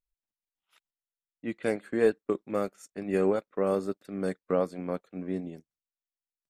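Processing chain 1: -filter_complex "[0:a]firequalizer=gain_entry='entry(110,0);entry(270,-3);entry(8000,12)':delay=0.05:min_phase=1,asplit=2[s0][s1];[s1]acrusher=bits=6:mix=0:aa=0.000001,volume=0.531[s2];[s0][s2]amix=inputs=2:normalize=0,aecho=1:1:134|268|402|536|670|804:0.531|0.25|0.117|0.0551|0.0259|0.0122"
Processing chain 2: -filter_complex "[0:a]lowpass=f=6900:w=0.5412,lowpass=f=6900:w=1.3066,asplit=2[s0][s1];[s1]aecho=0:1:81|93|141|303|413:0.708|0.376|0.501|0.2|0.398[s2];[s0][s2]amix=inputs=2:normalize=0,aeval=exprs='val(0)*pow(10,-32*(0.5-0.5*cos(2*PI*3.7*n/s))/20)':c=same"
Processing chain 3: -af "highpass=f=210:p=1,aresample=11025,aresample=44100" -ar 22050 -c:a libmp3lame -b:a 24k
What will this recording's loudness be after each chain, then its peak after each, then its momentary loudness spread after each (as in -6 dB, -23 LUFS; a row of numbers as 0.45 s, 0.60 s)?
-27.5 LUFS, -34.5 LUFS, -32.5 LUFS; -9.0 dBFS, -13.0 dBFS, -13.5 dBFS; 11 LU, 12 LU, 11 LU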